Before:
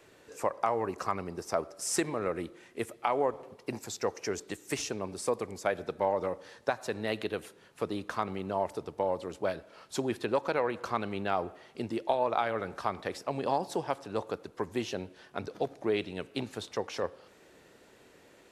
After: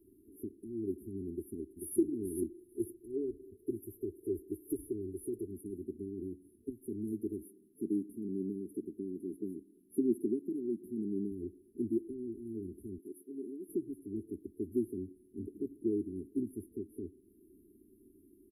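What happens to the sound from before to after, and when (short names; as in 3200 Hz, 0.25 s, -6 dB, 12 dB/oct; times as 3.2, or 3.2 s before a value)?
1.32–1.99 echo throw 0.44 s, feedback 10%, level -5.5 dB
2.51–5.47 comb 2.2 ms, depth 58%
7.43–11.32 resonant low shelf 120 Hz -11 dB, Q 1.5
12.98–13.69 HPF 390 Hz
whole clip: FFT band-reject 440–9600 Hz; comb 3.4 ms, depth 81%; gain -1.5 dB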